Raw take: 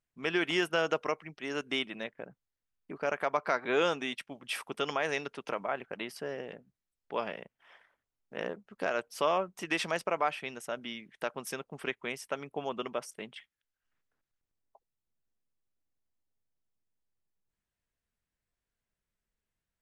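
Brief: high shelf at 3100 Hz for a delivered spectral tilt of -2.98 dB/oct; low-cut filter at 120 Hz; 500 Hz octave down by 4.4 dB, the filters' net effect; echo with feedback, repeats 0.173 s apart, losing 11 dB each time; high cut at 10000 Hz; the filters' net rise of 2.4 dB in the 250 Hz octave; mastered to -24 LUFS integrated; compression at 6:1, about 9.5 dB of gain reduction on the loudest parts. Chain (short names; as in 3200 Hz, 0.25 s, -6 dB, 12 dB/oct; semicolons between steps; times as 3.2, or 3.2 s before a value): HPF 120 Hz; LPF 10000 Hz; bell 250 Hz +7 dB; bell 500 Hz -8 dB; high shelf 3100 Hz +5.5 dB; compressor 6:1, threshold -35 dBFS; feedback echo 0.173 s, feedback 28%, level -11 dB; gain +16.5 dB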